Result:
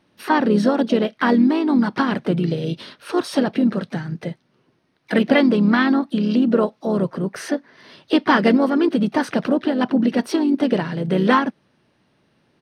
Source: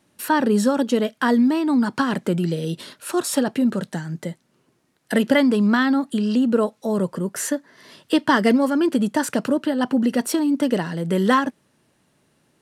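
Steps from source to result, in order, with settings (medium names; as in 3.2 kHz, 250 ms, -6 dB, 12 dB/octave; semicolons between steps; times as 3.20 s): harmony voices -3 st -10 dB, +3 st -15 dB, +5 st -17 dB; Savitzky-Golay filter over 15 samples; trim +1 dB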